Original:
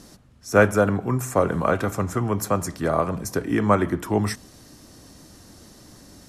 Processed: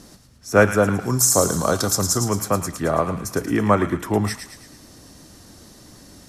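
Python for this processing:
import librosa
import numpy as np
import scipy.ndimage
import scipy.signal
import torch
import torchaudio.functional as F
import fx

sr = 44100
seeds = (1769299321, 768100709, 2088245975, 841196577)

y = fx.high_shelf_res(x, sr, hz=3500.0, db=13.5, q=3.0, at=(0.99, 2.27))
y = fx.echo_wet_highpass(y, sr, ms=110, feedback_pct=50, hz=1700.0, wet_db=-6.5)
y = y * librosa.db_to_amplitude(1.5)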